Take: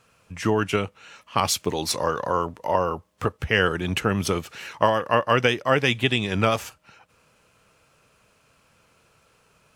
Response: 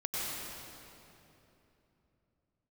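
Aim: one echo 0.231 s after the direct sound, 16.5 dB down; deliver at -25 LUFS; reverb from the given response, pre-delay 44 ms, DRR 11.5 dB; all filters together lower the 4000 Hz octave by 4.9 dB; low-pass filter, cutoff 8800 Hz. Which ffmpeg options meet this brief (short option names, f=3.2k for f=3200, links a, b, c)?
-filter_complex "[0:a]lowpass=8.8k,equalizer=f=4k:t=o:g=-7,aecho=1:1:231:0.15,asplit=2[a][b];[1:a]atrim=start_sample=2205,adelay=44[c];[b][c]afir=irnorm=-1:irlink=0,volume=-17dB[d];[a][d]amix=inputs=2:normalize=0,volume=-1dB"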